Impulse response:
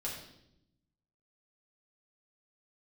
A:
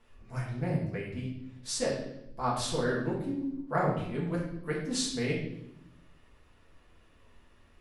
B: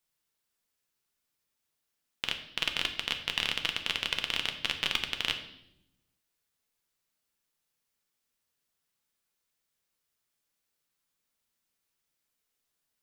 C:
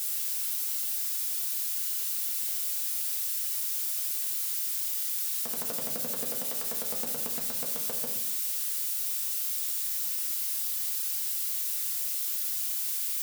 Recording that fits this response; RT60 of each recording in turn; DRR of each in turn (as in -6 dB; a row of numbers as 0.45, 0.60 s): A; 0.80, 0.80, 0.80 s; -5.5, 5.0, -0.5 dB